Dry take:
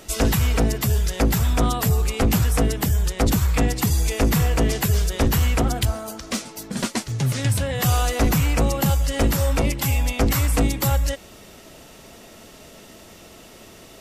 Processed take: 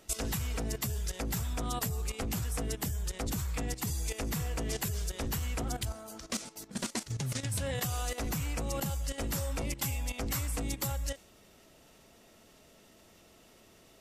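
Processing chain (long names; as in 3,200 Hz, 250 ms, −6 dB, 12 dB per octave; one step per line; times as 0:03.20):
output level in coarse steps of 13 dB
dynamic equaliser 8,000 Hz, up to +5 dB, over −47 dBFS, Q 0.73
level −7.5 dB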